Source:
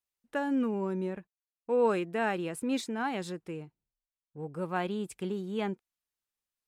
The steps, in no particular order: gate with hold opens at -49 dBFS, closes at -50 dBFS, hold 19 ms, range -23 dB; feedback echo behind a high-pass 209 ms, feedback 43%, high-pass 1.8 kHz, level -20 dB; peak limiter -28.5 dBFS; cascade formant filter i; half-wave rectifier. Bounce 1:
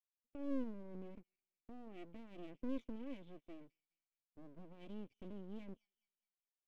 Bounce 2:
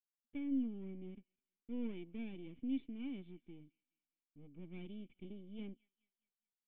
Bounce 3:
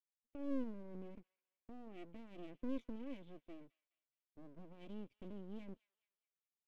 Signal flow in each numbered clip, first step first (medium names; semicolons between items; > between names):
peak limiter > cascade formant filter > gate with hold > feedback echo behind a high-pass > half-wave rectifier; gate with hold > feedback echo behind a high-pass > half-wave rectifier > cascade formant filter > peak limiter; peak limiter > cascade formant filter > gate with hold > half-wave rectifier > feedback echo behind a high-pass